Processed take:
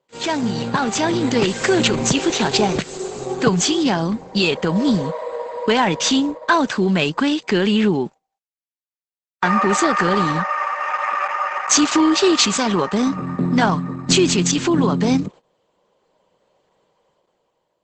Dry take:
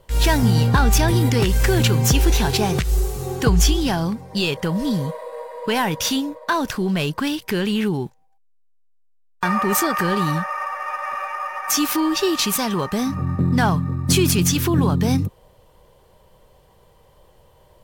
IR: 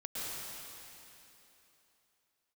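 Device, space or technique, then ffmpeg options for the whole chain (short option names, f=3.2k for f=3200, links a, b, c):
video call: -af "highpass=f=180:w=0.5412,highpass=f=180:w=1.3066,bandreject=f=5.5k:w=9.6,dynaudnorm=f=290:g=7:m=11dB,agate=range=-15dB:threshold=-35dB:ratio=16:detection=peak,volume=-1dB" -ar 48000 -c:a libopus -b:a 12k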